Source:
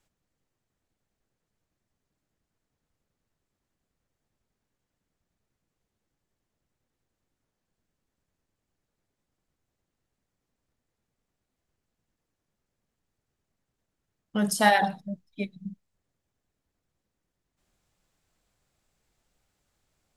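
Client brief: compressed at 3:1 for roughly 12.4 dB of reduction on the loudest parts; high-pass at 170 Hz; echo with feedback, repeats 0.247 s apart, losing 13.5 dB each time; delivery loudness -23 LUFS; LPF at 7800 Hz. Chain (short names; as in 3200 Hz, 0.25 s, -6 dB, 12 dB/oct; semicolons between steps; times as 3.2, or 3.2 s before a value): HPF 170 Hz; LPF 7800 Hz; compressor 3:1, threshold -32 dBFS; feedback echo 0.247 s, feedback 21%, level -13.5 dB; gain +13.5 dB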